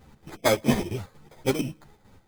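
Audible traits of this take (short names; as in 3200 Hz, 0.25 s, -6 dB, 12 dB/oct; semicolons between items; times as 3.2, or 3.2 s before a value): aliases and images of a low sample rate 2800 Hz, jitter 0%; chopped level 4.4 Hz, depth 60%, duty 60%; a shimmering, thickened sound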